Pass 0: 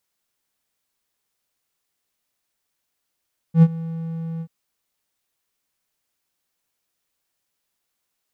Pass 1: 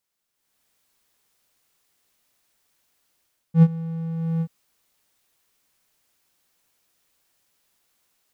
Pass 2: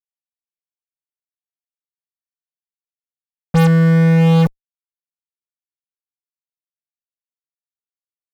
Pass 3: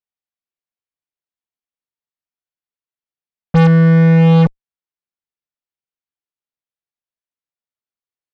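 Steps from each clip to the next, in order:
level rider gain up to 12 dB; trim -4 dB
fuzz box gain 39 dB, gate -44 dBFS; trim +3.5 dB
distance through air 140 m; trim +2.5 dB

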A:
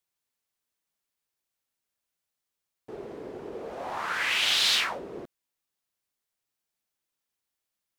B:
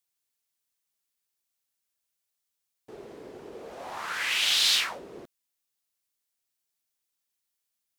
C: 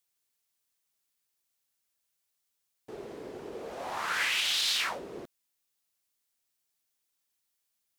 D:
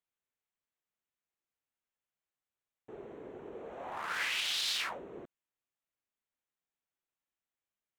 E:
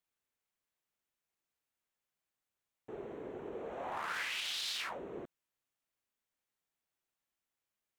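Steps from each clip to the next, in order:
treble shelf 2.8 kHz +9 dB; trim -5 dB
peak limiter -21.5 dBFS, peak gain reduction 9.5 dB; trim +2 dB
local Wiener filter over 9 samples; trim -4.5 dB
compression 6:1, threshold -38 dBFS, peak gain reduction 8 dB; trim +2.5 dB

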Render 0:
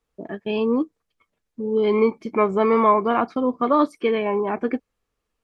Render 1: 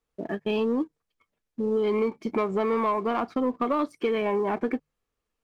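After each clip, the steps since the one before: hum notches 50/100/150 Hz; compression 4:1, threshold -23 dBFS, peak gain reduction 10 dB; waveshaping leveller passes 1; trim -2.5 dB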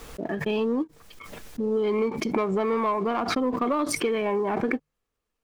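swell ahead of each attack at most 42 dB/s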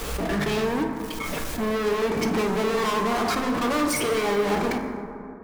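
waveshaping leveller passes 5; saturation -22 dBFS, distortion -13 dB; reverberation RT60 2.7 s, pre-delay 8 ms, DRR 2.5 dB; trim -3 dB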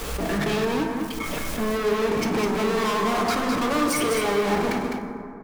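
delay 206 ms -5.5 dB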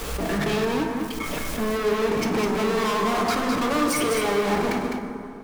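plate-style reverb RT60 3.1 s, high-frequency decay 1×, DRR 18 dB

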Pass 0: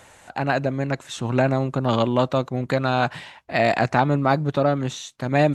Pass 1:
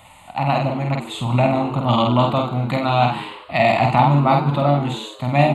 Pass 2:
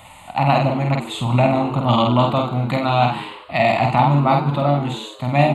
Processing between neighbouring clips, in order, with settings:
static phaser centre 1.6 kHz, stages 6; doubling 49 ms -3 dB; on a send: frequency-shifting echo 96 ms, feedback 52%, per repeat +95 Hz, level -13 dB; on the sum: trim +5 dB
gain riding within 4 dB 2 s

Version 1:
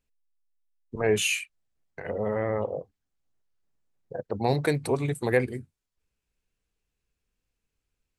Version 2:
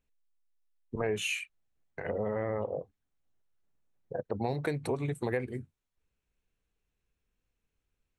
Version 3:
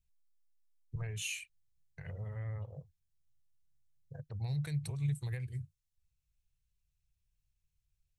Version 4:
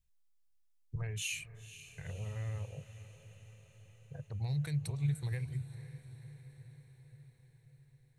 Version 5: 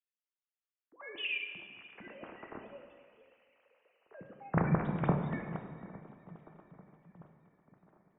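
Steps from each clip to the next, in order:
treble shelf 4.9 kHz -8 dB; band-stop 4.8 kHz, Q 8.8; compression 4:1, threshold -29 dBFS, peak gain reduction 10.5 dB
FFT filter 150 Hz 0 dB, 230 Hz -26 dB, 850 Hz -22 dB, 5 kHz -3 dB; trim +2.5 dB
echo that smears into a reverb 506 ms, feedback 63%, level -14 dB; trim +1 dB
formants replaced by sine waves; plate-style reverb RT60 1.7 s, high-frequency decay 0.8×, DRR 3 dB; tape noise reduction on one side only decoder only

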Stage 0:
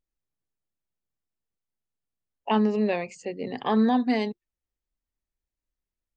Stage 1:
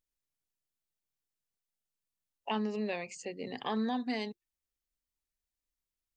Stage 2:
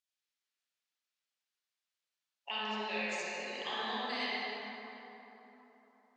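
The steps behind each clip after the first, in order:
treble shelf 2.1 kHz +9 dB; compression 1.5:1, threshold -32 dBFS, peak gain reduction 5.5 dB; trim -6.5 dB
band-pass filter 4 kHz, Q 0.64; reverberation RT60 3.7 s, pre-delay 27 ms, DRR -9.5 dB

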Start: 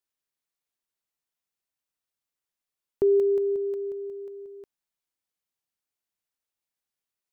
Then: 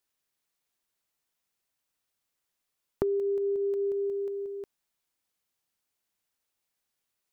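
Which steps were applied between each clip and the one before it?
compression 16:1, threshold -32 dBFS, peak gain reduction 14 dB; trim +6 dB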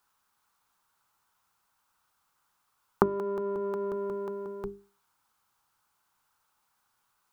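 octave divider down 1 oct, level +1 dB; high-order bell 1.1 kHz +13.5 dB 1.1 oct; hum notches 50/100/150/200/250/300/350/400 Hz; trim +5.5 dB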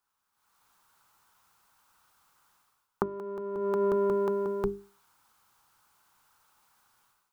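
level rider gain up to 16 dB; trim -8.5 dB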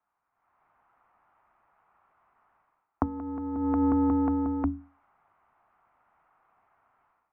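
mistuned SSB -120 Hz 150–2300 Hz; trim +2.5 dB

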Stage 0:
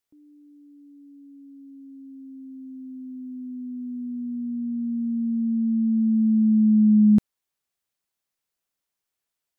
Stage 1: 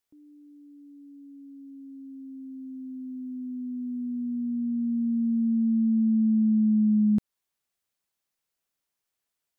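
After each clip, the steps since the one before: compression, threshold -20 dBFS, peak gain reduction 6.5 dB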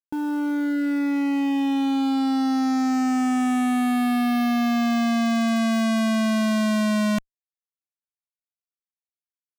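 fuzz box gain 53 dB, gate -57 dBFS; trim -7.5 dB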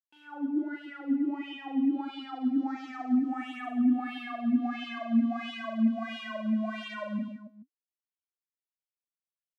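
wah-wah 1.5 Hz 230–3100 Hz, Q 9; reverse bouncing-ball echo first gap 40 ms, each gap 1.4×, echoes 5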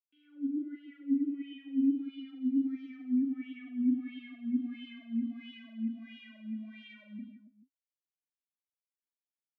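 vowel filter i

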